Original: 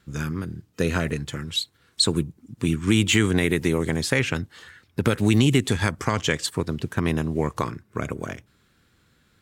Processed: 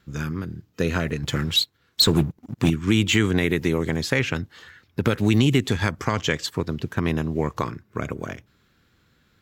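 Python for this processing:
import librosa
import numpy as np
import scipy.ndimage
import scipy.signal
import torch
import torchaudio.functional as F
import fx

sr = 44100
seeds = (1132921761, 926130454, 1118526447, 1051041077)

y = fx.peak_eq(x, sr, hz=9100.0, db=-13.5, octaves=0.35)
y = fx.leveller(y, sr, passes=2, at=(1.23, 2.7))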